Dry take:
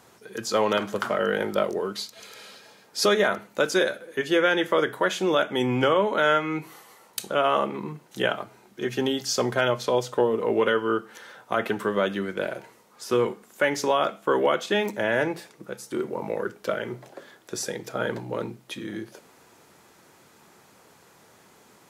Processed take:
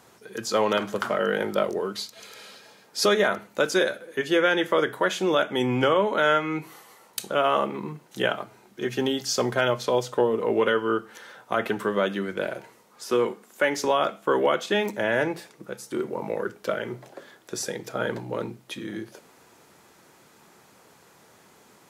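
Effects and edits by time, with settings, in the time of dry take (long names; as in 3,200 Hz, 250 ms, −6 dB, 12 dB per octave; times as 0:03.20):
0:07.32–0:10.11: floating-point word with a short mantissa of 6 bits
0:13.05–0:13.85: high-pass filter 170 Hz
whole clip: mains-hum notches 50/100 Hz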